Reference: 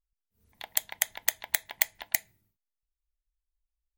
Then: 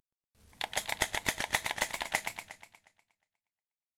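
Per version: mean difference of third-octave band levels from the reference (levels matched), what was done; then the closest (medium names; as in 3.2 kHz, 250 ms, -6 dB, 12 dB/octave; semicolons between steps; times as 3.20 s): 13.0 dB: CVSD coder 64 kbps; modulated delay 120 ms, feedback 54%, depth 175 cents, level -6.5 dB; trim +6.5 dB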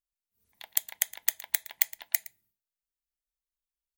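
5.5 dB: tilt EQ +2 dB/octave; on a send: delay 115 ms -19.5 dB; on the sum: trim -6.5 dB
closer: second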